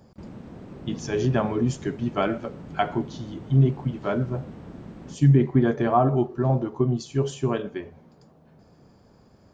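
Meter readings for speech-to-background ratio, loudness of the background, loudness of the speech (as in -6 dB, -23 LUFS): 18.0 dB, -42.5 LUFS, -24.5 LUFS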